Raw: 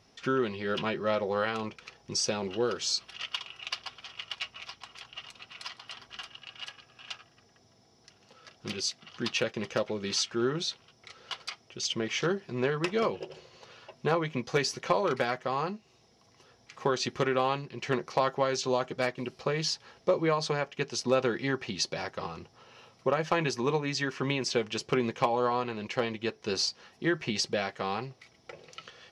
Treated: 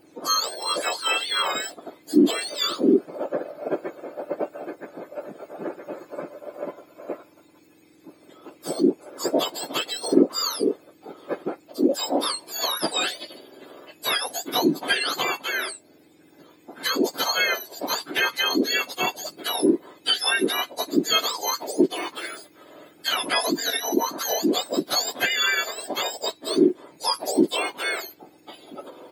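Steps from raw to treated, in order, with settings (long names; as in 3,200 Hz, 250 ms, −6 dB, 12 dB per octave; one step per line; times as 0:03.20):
frequency axis turned over on the octave scale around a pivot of 1,300 Hz
level +8 dB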